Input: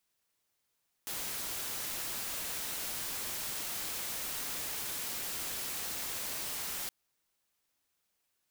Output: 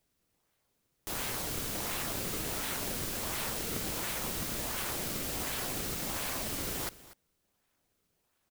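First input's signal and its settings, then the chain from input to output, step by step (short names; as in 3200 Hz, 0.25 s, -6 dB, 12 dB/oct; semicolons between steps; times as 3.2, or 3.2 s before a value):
noise white, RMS -38 dBFS 5.82 s
low shelf 200 Hz +7 dB; in parallel at -3 dB: decimation with a swept rate 29×, swing 160% 1.4 Hz; on the sum: echo 0.243 s -18 dB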